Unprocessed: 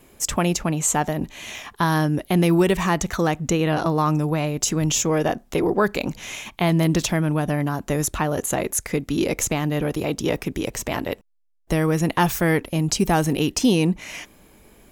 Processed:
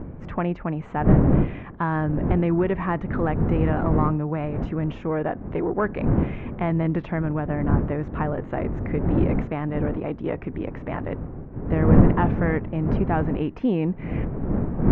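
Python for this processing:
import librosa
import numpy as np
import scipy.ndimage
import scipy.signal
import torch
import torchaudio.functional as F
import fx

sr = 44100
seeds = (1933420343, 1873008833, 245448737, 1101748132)

y = fx.diode_clip(x, sr, knee_db=-8.5)
y = fx.dmg_wind(y, sr, seeds[0], corner_hz=220.0, level_db=-21.0)
y = scipy.signal.sosfilt(scipy.signal.butter(4, 2000.0, 'lowpass', fs=sr, output='sos'), y)
y = F.gain(torch.from_numpy(y), -3.5).numpy()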